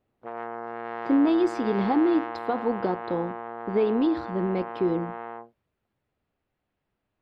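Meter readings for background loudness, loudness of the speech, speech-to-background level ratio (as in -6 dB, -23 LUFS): -35.5 LUFS, -26.0 LUFS, 9.5 dB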